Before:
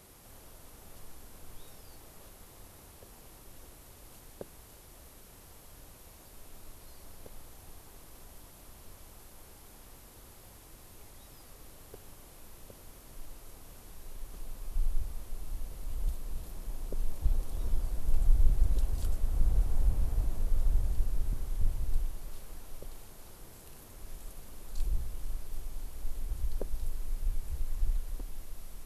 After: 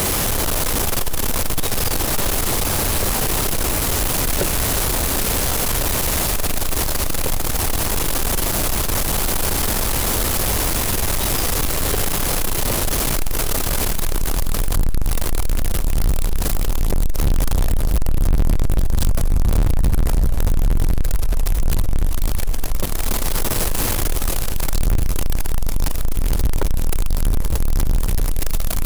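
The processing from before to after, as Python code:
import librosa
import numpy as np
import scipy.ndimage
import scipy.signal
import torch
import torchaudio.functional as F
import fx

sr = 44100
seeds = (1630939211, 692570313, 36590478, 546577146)

y = x + 0.5 * 10.0 ** (-33.0 / 20.0) * np.sign(x)
y = fx.peak_eq(y, sr, hz=140.0, db=-14.5, octaves=2.0, at=(21.02, 21.6), fade=0.02)
y = fx.echo_diffused(y, sr, ms=847, feedback_pct=55, wet_db=-12.0)
y = fx.leveller(y, sr, passes=5)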